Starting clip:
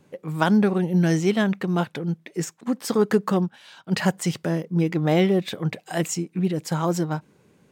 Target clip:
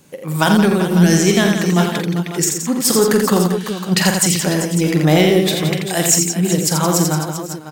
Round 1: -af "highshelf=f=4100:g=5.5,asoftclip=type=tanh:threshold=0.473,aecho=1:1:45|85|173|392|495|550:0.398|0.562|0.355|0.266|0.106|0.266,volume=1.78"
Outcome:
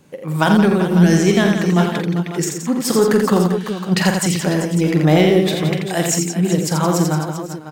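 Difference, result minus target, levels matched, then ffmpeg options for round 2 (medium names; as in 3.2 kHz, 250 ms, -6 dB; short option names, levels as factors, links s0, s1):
8 kHz band -6.0 dB
-af "highshelf=f=4100:g=15.5,asoftclip=type=tanh:threshold=0.473,aecho=1:1:45|85|173|392|495|550:0.398|0.562|0.355|0.266|0.106|0.266,volume=1.78"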